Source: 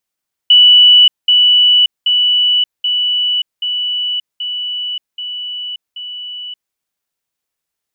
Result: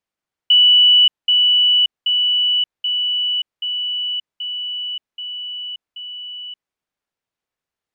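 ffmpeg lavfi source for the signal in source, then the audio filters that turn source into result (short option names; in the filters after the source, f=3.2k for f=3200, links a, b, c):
-f lavfi -i "aevalsrc='pow(10,(-3-3*floor(t/0.78))/20)*sin(2*PI*2960*t)*clip(min(mod(t,0.78),0.58-mod(t,0.78))/0.005,0,1)':d=6.24:s=44100"
-af "aemphasis=mode=reproduction:type=75kf"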